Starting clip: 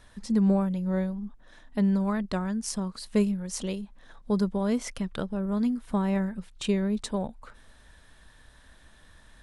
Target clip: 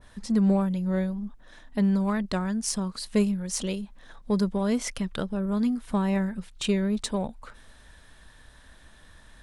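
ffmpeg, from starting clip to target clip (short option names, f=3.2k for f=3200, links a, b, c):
-filter_complex "[0:a]asplit=2[a][b];[b]asoftclip=type=tanh:threshold=-30.5dB,volume=-10dB[c];[a][c]amix=inputs=2:normalize=0,adynamicequalizer=threshold=0.00708:dfrequency=1700:dqfactor=0.7:tfrequency=1700:tqfactor=0.7:attack=5:release=100:ratio=0.375:range=1.5:mode=boostabove:tftype=highshelf"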